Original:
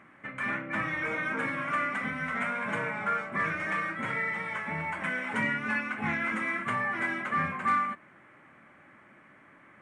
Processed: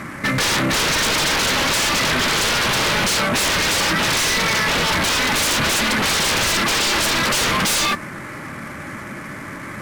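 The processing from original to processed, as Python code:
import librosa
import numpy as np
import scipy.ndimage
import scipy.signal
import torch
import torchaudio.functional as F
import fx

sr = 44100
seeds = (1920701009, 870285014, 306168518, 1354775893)

y = fx.cvsd(x, sr, bps=64000)
y = fx.low_shelf(y, sr, hz=160.0, db=11.5)
y = fx.fold_sine(y, sr, drive_db=19, ceiling_db=-15.5)
y = fx.notch(y, sr, hz=730.0, q=12.0)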